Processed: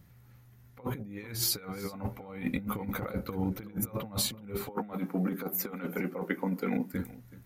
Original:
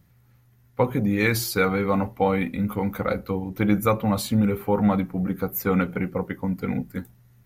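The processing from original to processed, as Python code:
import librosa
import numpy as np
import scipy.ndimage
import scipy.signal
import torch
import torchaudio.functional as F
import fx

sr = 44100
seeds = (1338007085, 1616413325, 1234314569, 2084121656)

y = fx.highpass(x, sr, hz=210.0, slope=24, at=(4.69, 6.94))
y = fx.over_compress(y, sr, threshold_db=-29.0, ratio=-0.5)
y = y + 10.0 ** (-19.0 / 20.0) * np.pad(y, (int(375 * sr / 1000.0), 0))[:len(y)]
y = y * 10.0 ** (-4.5 / 20.0)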